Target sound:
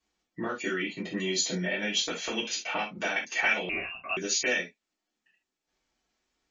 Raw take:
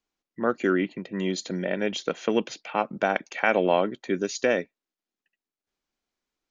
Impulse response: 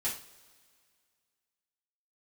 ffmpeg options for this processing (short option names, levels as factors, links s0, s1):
-filter_complex "[0:a]acrossover=split=2300[s0][s1];[s0]acompressor=threshold=0.0158:ratio=20[s2];[s2][s1]amix=inputs=2:normalize=0[s3];[1:a]atrim=start_sample=2205,afade=t=out:st=0.13:d=0.01,atrim=end_sample=6174,asetrate=43218,aresample=44100[s4];[s3][s4]afir=irnorm=-1:irlink=0,asettb=1/sr,asplit=3[s5][s6][s7];[s5]atrim=end=3.694[s8];[s6]atrim=start=3.69:end=4.17,asetpts=PTS-STARTPTS,afade=t=in:d=0.004:c=qsin,afade=t=out:st=0.476:d=0.004:c=qsin,lowpass=f=2600:t=q:w=0.5098,lowpass=f=2600:t=q:w=0.6013,lowpass=f=2600:t=q:w=0.9,lowpass=f=2600:t=q:w=2.563,afreqshift=-3000[s9];[s7]atrim=start=4.166[s10];[s8][s9]acrossfade=d=0.004:c1=hsin:c2=qsin[s11];[s11][s10]acrossfade=d=0.004:c1=qsin:c2=hsin,volume=1.58" -ar 22050 -c:a libmp3lame -b:a 32k